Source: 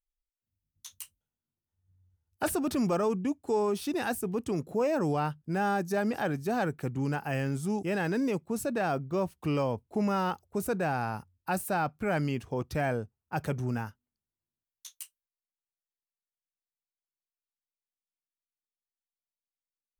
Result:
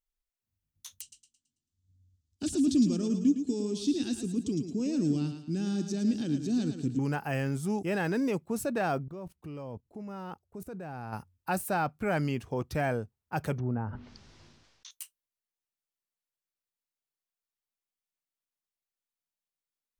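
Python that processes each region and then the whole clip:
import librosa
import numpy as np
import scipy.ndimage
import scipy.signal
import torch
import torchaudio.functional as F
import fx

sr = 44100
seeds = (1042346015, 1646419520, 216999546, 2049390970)

y = fx.chain(x, sr, fx.curve_eq(hz=(180.0, 270.0, 510.0, 830.0, 2100.0, 3400.0, 7400.0, 13000.0), db=(0, 8, -15, -25, -15, 2, 5, -25)),
    fx.echo_thinned(ms=110, feedback_pct=38, hz=190.0, wet_db=-7.5), at=(1.01, 6.99))
y = fx.chain(y, sr, fx.tilt_shelf(db=3.5, hz=660.0),
    fx.level_steps(step_db=20), at=(9.03, 11.13))
y = fx.chain(y, sr, fx.env_lowpass_down(base_hz=910.0, full_db=-32.5),
    fx.cheby1_lowpass(hz=5500.0, order=3),
    fx.sustainer(db_per_s=37.0), at=(13.58, 14.91))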